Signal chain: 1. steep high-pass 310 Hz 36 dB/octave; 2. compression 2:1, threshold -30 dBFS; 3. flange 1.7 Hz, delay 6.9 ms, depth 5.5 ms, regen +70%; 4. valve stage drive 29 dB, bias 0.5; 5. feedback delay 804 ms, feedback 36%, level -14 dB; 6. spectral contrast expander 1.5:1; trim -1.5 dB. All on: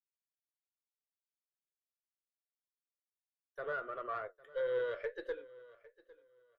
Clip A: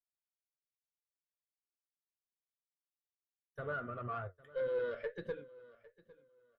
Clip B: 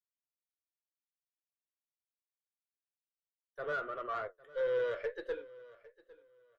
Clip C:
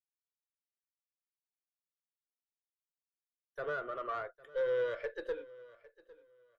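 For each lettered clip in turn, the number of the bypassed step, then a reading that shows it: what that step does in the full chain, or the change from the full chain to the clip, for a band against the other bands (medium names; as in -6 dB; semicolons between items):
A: 1, 125 Hz band +16.5 dB; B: 2, mean gain reduction 4.5 dB; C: 3, momentary loudness spread change -4 LU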